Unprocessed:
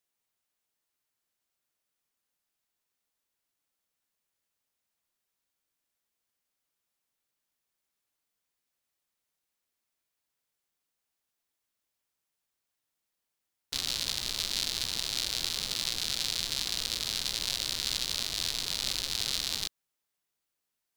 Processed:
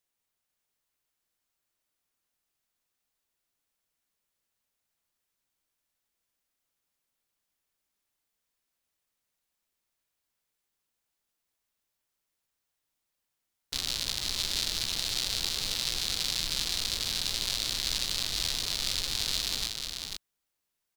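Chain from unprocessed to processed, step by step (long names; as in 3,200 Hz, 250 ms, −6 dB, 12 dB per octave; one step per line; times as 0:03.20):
low-shelf EQ 63 Hz +7 dB
single-tap delay 493 ms −5 dB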